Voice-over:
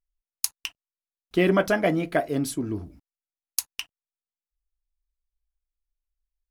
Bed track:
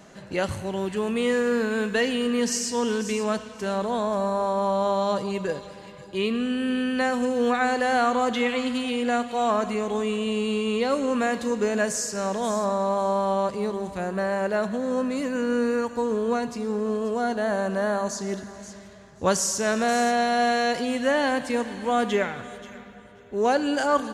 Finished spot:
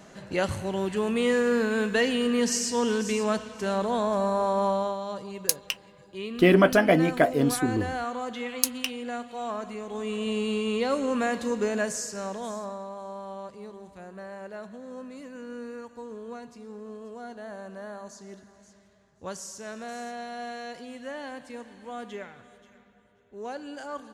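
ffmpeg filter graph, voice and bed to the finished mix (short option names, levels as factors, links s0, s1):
-filter_complex "[0:a]adelay=5050,volume=1.33[s0];[1:a]volume=2.24,afade=t=out:st=4.66:d=0.32:silence=0.334965,afade=t=in:st=9.88:d=0.41:silence=0.421697,afade=t=out:st=11.6:d=1.3:silence=0.237137[s1];[s0][s1]amix=inputs=2:normalize=0"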